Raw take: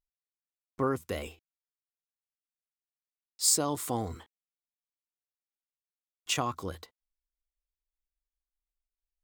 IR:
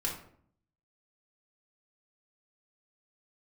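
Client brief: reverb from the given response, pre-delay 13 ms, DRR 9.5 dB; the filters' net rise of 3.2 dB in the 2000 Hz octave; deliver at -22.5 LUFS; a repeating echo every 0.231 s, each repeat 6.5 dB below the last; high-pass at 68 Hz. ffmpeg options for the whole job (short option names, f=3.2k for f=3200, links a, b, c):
-filter_complex "[0:a]highpass=68,equalizer=f=2k:t=o:g=4.5,aecho=1:1:231|462|693|924|1155|1386:0.473|0.222|0.105|0.0491|0.0231|0.0109,asplit=2[a][b];[1:a]atrim=start_sample=2205,adelay=13[c];[b][c]afir=irnorm=-1:irlink=0,volume=-13.5dB[d];[a][d]amix=inputs=2:normalize=0,volume=7dB"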